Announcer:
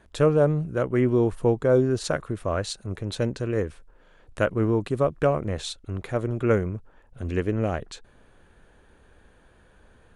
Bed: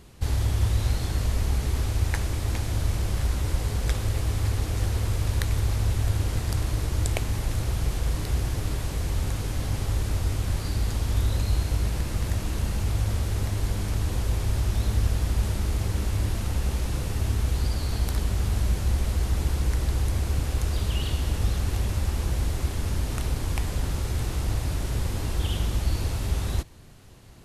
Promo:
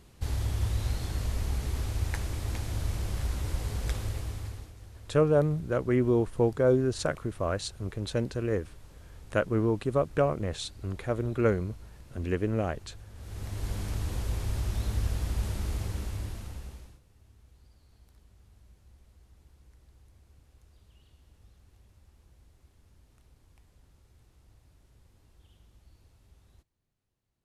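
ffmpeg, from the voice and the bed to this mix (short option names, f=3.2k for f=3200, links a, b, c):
-filter_complex "[0:a]adelay=4950,volume=-3.5dB[a];[1:a]volume=11dB,afade=t=out:st=3.97:d=0.77:silence=0.141254,afade=t=in:st=13.14:d=0.6:silence=0.141254,afade=t=out:st=15.73:d=1.27:silence=0.0421697[b];[a][b]amix=inputs=2:normalize=0"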